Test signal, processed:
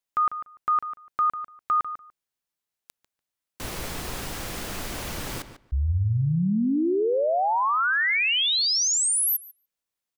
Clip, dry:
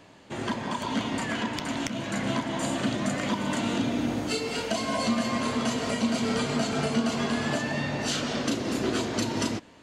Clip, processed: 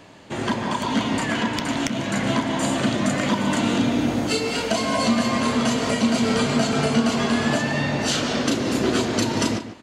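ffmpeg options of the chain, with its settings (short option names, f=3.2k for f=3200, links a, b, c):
-filter_complex "[0:a]asplit=2[a][b];[b]adelay=146,lowpass=f=3.3k:p=1,volume=-11dB,asplit=2[c][d];[d]adelay=146,lowpass=f=3.3k:p=1,volume=0.16[e];[a][c][e]amix=inputs=3:normalize=0,volume=6dB"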